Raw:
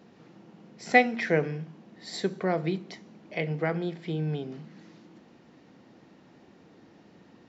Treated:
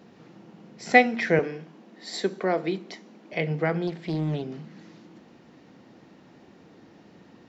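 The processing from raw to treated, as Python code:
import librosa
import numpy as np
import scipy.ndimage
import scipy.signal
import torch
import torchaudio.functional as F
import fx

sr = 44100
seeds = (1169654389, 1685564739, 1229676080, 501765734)

y = fx.highpass(x, sr, hz=210.0, slope=24, at=(1.39, 3.33))
y = fx.doppler_dist(y, sr, depth_ms=0.46, at=(3.87, 4.42))
y = y * 10.0 ** (3.0 / 20.0)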